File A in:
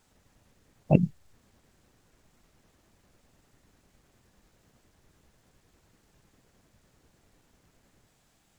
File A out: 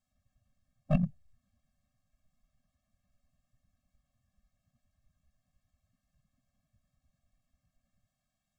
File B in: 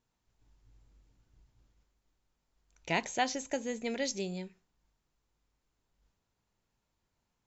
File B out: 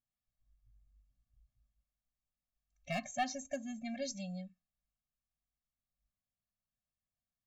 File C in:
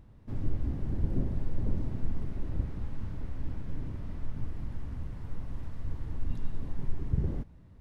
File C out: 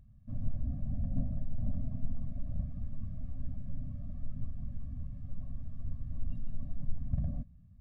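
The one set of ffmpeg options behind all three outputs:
-af "afftdn=nr=13:nf=-49,aeval=exprs='clip(val(0),-1,0.0708)':c=same,afftfilt=real='re*eq(mod(floor(b*sr/1024/260),2),0)':imag='im*eq(mod(floor(b*sr/1024/260),2),0)':win_size=1024:overlap=0.75,volume=0.75"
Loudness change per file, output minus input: -6.0 LU, -5.5 LU, -3.5 LU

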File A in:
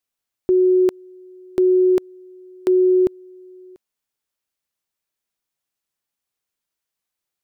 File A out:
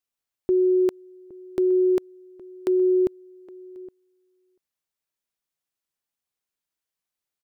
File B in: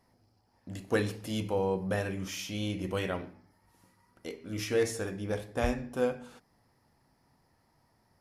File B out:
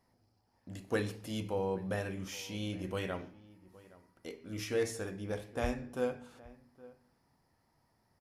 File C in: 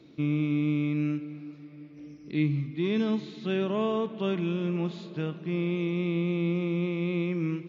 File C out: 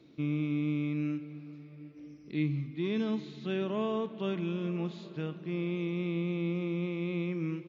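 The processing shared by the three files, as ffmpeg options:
-filter_complex "[0:a]asplit=2[s0][s1];[s1]adelay=816.3,volume=0.1,highshelf=f=4000:g=-18.4[s2];[s0][s2]amix=inputs=2:normalize=0,volume=0.596"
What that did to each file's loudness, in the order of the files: -4.5 LU, -4.5 LU, -4.5 LU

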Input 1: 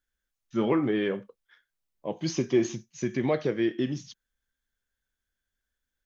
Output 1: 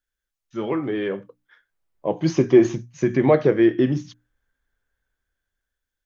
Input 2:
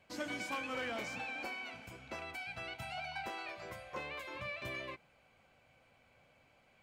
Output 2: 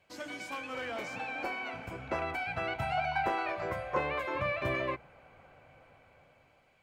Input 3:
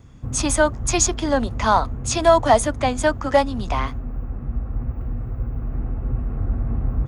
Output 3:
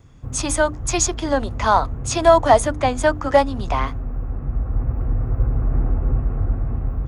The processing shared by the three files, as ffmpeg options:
-filter_complex "[0:a]equalizer=f=220:t=o:w=0.31:g=-5.5,bandreject=f=60:t=h:w=6,bandreject=f=120:t=h:w=6,bandreject=f=180:t=h:w=6,bandreject=f=240:t=h:w=6,bandreject=f=300:t=h:w=6,acrossover=split=2000[s0][s1];[s0]dynaudnorm=f=420:g=7:m=5.01[s2];[s2][s1]amix=inputs=2:normalize=0,volume=0.891"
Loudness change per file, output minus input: +8.0 LU, +7.0 LU, +1.0 LU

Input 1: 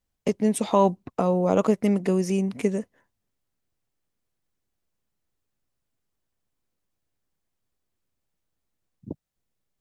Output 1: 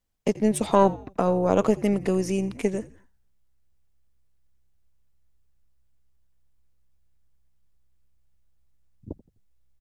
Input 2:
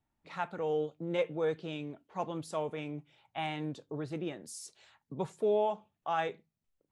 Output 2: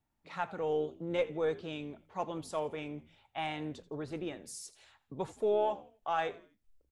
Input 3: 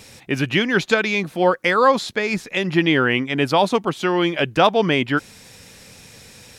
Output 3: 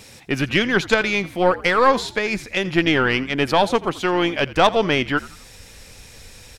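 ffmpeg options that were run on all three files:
-filter_complex "[0:a]asubboost=boost=9.5:cutoff=50,aeval=exprs='0.794*(cos(1*acos(clip(val(0)/0.794,-1,1)))-cos(1*PI/2))+0.0794*(cos(4*acos(clip(val(0)/0.794,-1,1)))-cos(4*PI/2))':c=same,asplit=4[s0][s1][s2][s3];[s1]adelay=84,afreqshift=-65,volume=0.119[s4];[s2]adelay=168,afreqshift=-130,volume=0.0462[s5];[s3]adelay=252,afreqshift=-195,volume=0.018[s6];[s0][s4][s5][s6]amix=inputs=4:normalize=0"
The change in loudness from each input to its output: 0.0 LU, -0.5 LU, -0.5 LU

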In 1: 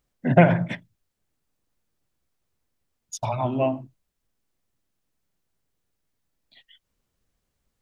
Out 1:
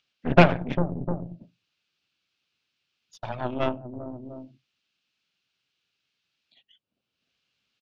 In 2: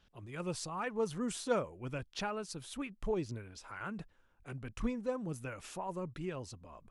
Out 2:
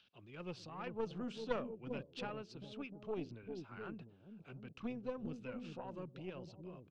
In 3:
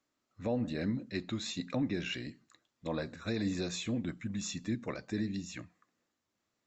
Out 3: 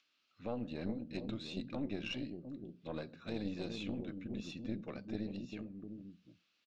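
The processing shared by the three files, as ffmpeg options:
-filter_complex "[0:a]highpass=130,equalizer=f=1000:t=q:w=4:g=-4,equalizer=f=1900:t=q:w=4:g=-9,equalizer=f=2700:t=q:w=4:g=5,lowpass=f=4600:w=0.5412,lowpass=f=4600:w=1.3066,acrossover=split=560|1500[s0][s1][s2];[s0]aecho=1:1:113|399|703:0.112|0.631|0.473[s3];[s1]asoftclip=type=tanh:threshold=0.0891[s4];[s2]acompressor=mode=upward:threshold=0.00178:ratio=2.5[s5];[s3][s4][s5]amix=inputs=3:normalize=0,aeval=exprs='0.891*(cos(1*acos(clip(val(0)/0.891,-1,1)))-cos(1*PI/2))+0.00708*(cos(5*acos(clip(val(0)/0.891,-1,1)))-cos(5*PI/2))+0.0891*(cos(7*acos(clip(val(0)/0.891,-1,1)))-cos(7*PI/2))+0.0794*(cos(8*acos(clip(val(0)/0.891,-1,1)))-cos(8*PI/2))':c=same,volume=1.33"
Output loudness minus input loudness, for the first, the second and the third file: -2.5 LU, -6.5 LU, -6.0 LU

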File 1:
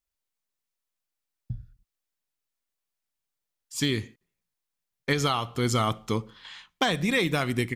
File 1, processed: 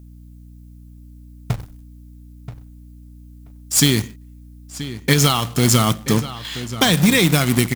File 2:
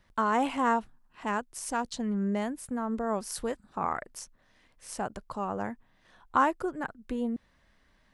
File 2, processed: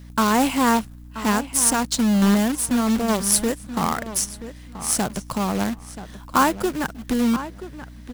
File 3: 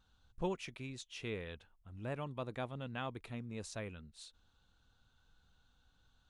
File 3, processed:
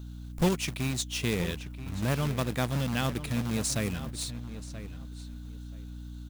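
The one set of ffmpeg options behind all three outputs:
-filter_complex "[0:a]equalizer=f=170:w=0.82:g=10.5,asplit=2[s0][s1];[s1]acompressor=threshold=0.0224:ratio=6,volume=0.794[s2];[s0][s2]amix=inputs=2:normalize=0,crystalizer=i=3.5:c=0,acrusher=bits=2:mode=log:mix=0:aa=0.000001,aeval=exprs='val(0)+0.00794*(sin(2*PI*60*n/s)+sin(2*PI*2*60*n/s)/2+sin(2*PI*3*60*n/s)/3+sin(2*PI*4*60*n/s)/4+sin(2*PI*5*60*n/s)/5)':c=same,asplit=2[s3][s4];[s4]adelay=980,lowpass=f=3800:p=1,volume=0.224,asplit=2[s5][s6];[s6]adelay=980,lowpass=f=3800:p=1,volume=0.19[s7];[s3][s5][s7]amix=inputs=3:normalize=0,volume=1.26"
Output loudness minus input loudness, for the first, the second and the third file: +9.5 LU, +10.5 LU, +12.5 LU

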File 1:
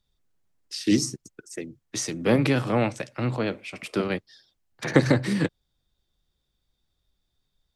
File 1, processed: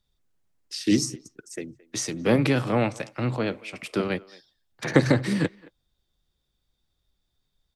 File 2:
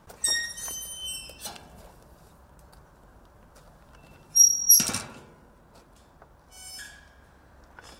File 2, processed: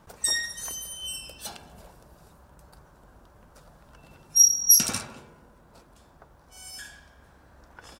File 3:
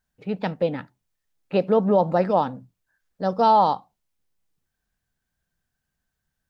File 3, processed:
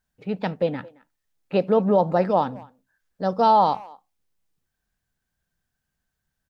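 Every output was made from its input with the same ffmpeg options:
-filter_complex "[0:a]asplit=2[s0][s1];[s1]adelay=220,highpass=300,lowpass=3400,asoftclip=type=hard:threshold=0.237,volume=0.0794[s2];[s0][s2]amix=inputs=2:normalize=0"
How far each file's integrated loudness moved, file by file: 0.0 LU, 0.0 LU, 0.0 LU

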